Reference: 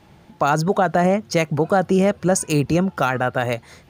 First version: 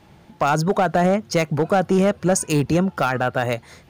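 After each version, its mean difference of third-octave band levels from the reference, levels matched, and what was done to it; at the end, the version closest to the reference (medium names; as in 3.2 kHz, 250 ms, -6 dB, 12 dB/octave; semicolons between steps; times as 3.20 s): 1.0 dB: overload inside the chain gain 11 dB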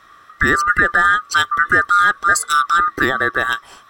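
10.5 dB: split-band scrambler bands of 1 kHz; trim +3 dB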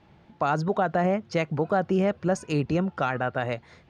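2.5 dB: low-pass 4 kHz 12 dB/octave; trim -6.5 dB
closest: first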